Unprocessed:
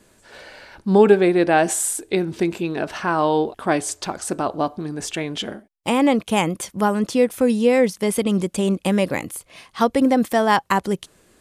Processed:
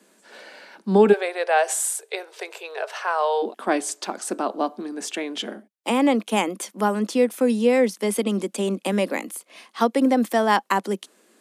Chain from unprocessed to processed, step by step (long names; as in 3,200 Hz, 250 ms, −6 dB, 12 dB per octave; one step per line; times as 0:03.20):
Butterworth high-pass 180 Hz 72 dB per octave, from 0:01.12 430 Hz, from 0:03.42 200 Hz
level −2 dB